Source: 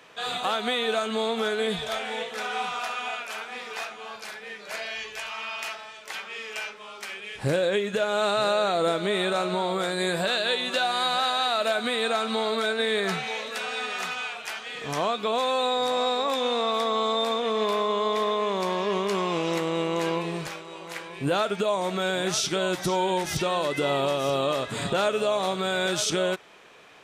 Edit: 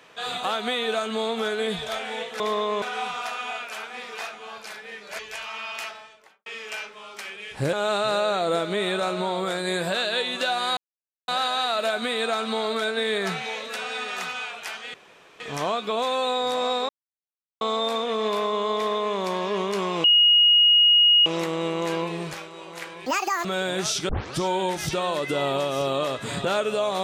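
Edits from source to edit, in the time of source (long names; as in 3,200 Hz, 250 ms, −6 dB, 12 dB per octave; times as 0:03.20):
0:04.77–0:05.03: remove
0:05.72–0:06.30: fade out and dull
0:07.57–0:08.06: remove
0:11.10: splice in silence 0.51 s
0:14.76: splice in room tone 0.46 s
0:16.25–0:16.97: silence
0:18.10–0:18.52: duplicate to 0:02.40
0:19.40: insert tone 2,880 Hz −13 dBFS 1.22 s
0:21.20–0:21.93: play speed 188%
0:22.57: tape start 0.32 s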